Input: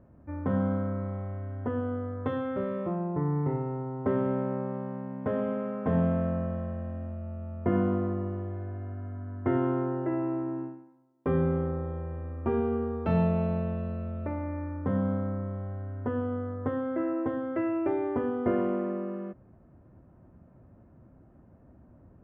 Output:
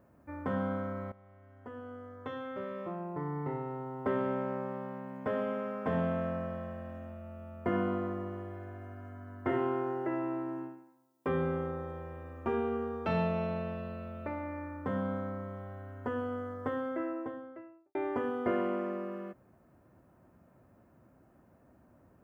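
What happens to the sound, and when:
0:01.12–0:03.96: fade in, from −17.5 dB
0:09.43–0:10.07: flutter between parallel walls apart 5.7 metres, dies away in 0.46 s
0:16.70–0:17.95: fade out and dull
whole clip: spectral tilt +3 dB per octave

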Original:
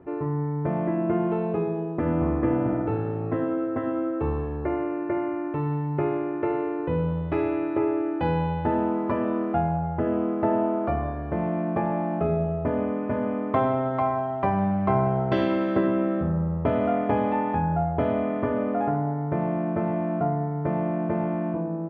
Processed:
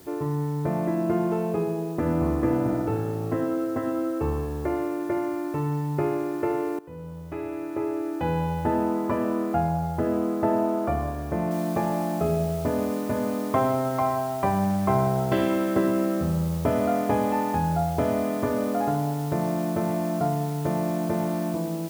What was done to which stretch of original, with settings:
0:06.79–0:08.62: fade in, from −19.5 dB
0:11.51: noise floor change −54 dB −46 dB

